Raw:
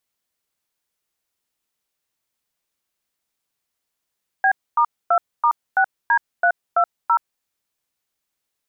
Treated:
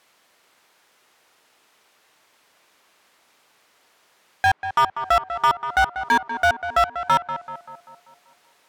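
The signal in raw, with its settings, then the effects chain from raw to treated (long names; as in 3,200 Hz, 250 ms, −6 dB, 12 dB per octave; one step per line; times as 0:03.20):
touch tones "B*2*6D320", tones 76 ms, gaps 256 ms, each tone −15.5 dBFS
treble cut that deepens with the level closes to 1,700 Hz, closed at −17 dBFS
mid-hump overdrive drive 36 dB, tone 1,500 Hz, clips at −9.5 dBFS
tape delay 193 ms, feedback 60%, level −8 dB, low-pass 1,800 Hz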